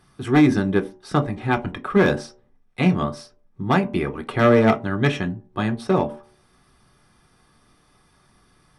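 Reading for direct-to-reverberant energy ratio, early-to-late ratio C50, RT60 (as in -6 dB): 4.0 dB, 16.5 dB, 0.45 s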